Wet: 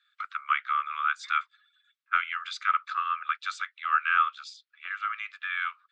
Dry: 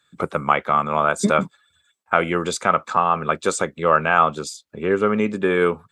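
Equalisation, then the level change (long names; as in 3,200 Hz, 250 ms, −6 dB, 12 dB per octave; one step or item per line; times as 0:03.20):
Butterworth high-pass 1,200 Hz 72 dB per octave
low-pass filter 4,600 Hz 24 dB per octave
−4.5 dB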